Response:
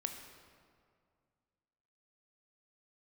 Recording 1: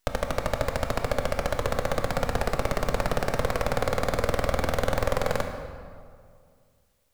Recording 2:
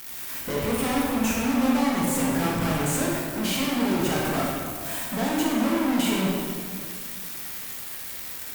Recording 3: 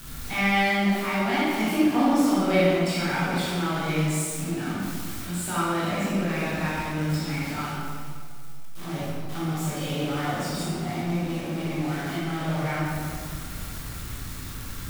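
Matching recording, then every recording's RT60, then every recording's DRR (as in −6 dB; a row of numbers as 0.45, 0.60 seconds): 1; 2.1, 2.1, 2.1 seconds; 4.5, −4.5, −9.5 decibels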